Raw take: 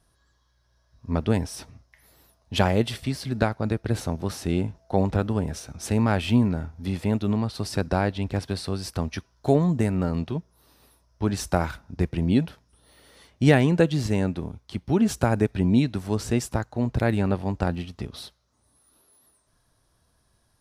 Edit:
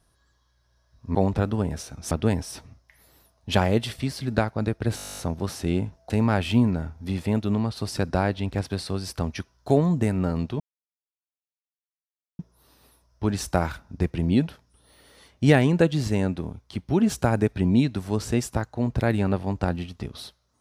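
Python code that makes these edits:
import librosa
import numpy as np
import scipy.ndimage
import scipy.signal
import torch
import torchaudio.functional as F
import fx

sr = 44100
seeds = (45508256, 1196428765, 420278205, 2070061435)

y = fx.edit(x, sr, fx.stutter(start_s=4.0, slice_s=0.02, count=12),
    fx.move(start_s=4.92, length_s=0.96, to_s=1.15),
    fx.insert_silence(at_s=10.38, length_s=1.79), tone=tone)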